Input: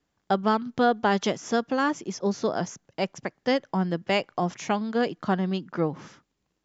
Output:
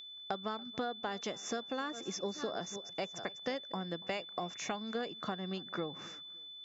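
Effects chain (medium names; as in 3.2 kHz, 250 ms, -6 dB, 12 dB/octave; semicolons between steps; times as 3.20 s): 1.39–3.72 s: chunks repeated in reverse 376 ms, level -14 dB; bass shelf 260 Hz -9.5 dB; compression 6:1, threshold -33 dBFS, peak gain reduction 14.5 dB; whistle 3.5 kHz -38 dBFS; peaking EQ 3.4 kHz -8 dB 0.28 oct; band-stop 920 Hz, Q 10; tape echo 283 ms, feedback 34%, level -21 dB, low-pass 1.9 kHz; trim -1.5 dB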